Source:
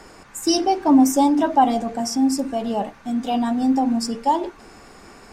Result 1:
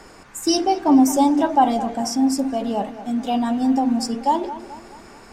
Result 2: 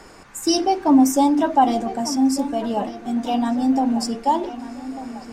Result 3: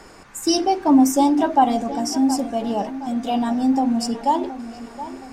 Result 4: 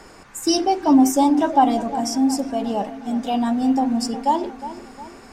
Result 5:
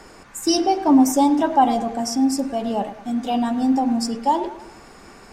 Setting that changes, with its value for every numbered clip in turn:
delay with a low-pass on its return, delay time: 216, 1,195, 720, 359, 104 milliseconds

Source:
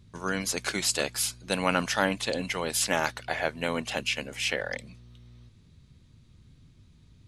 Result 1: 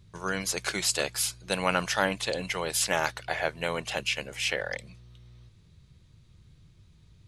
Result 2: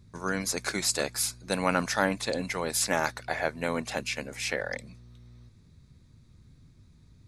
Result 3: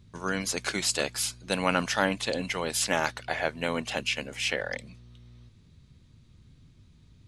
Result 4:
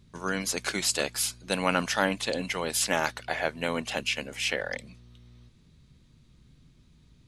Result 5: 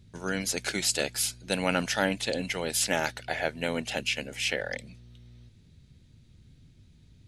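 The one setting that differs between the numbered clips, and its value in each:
parametric band, centre frequency: 250, 3,000, 14,000, 95, 1,100 Hertz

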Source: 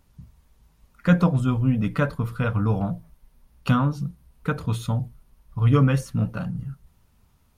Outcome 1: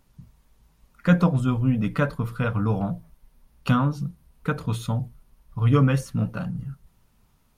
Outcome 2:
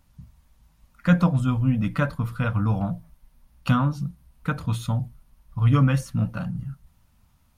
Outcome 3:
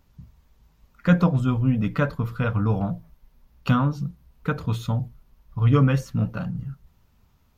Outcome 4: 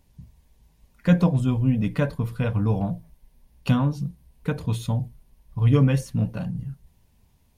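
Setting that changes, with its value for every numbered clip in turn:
parametric band, centre frequency: 78, 410, 9,600, 1,300 Hertz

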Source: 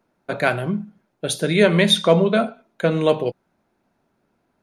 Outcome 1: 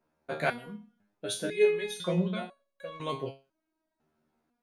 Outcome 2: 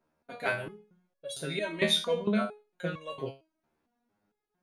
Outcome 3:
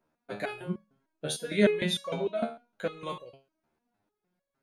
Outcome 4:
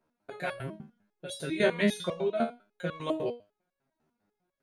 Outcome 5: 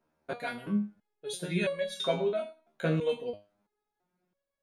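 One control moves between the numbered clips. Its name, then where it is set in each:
step-sequenced resonator, speed: 2, 4.4, 6.6, 10, 3 Hertz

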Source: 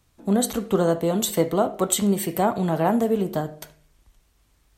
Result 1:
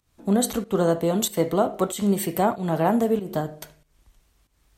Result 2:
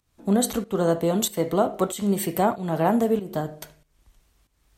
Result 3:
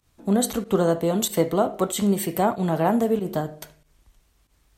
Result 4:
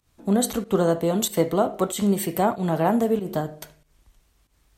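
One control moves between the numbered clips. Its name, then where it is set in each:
fake sidechain pumping, release: 236, 354, 90, 144 milliseconds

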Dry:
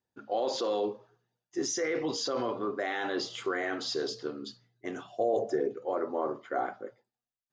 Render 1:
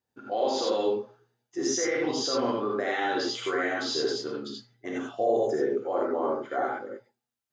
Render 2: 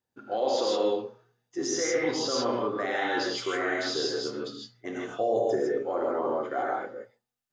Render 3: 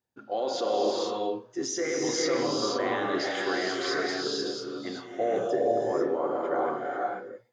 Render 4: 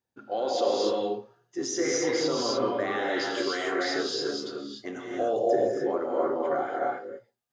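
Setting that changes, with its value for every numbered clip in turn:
reverb whose tail is shaped and stops, gate: 110, 180, 520, 320 milliseconds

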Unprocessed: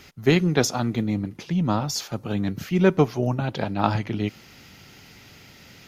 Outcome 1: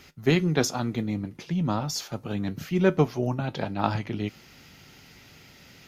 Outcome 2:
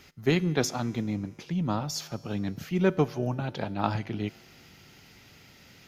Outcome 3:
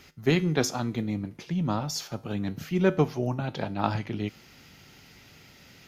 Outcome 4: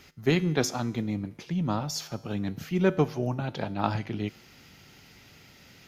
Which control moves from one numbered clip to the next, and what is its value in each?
tuned comb filter, decay: 0.15, 2.2, 0.4, 0.87 seconds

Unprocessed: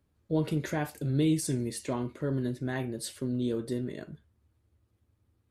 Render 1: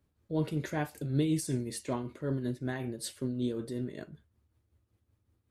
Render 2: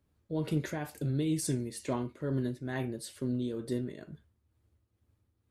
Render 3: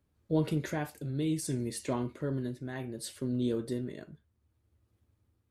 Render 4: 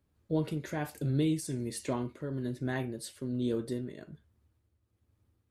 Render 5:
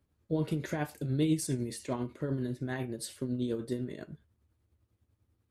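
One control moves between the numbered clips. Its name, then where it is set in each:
shaped tremolo, speed: 5.3, 2.2, 0.65, 1.2, 10 Hertz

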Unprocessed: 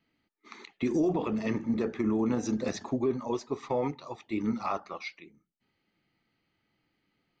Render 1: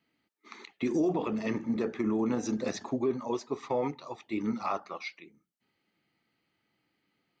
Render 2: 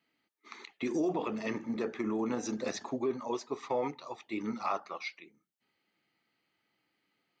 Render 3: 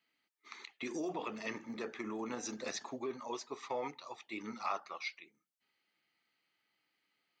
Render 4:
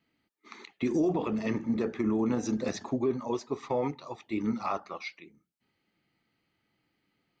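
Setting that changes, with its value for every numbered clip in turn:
high-pass filter, corner frequency: 150, 430, 1,400, 42 Hertz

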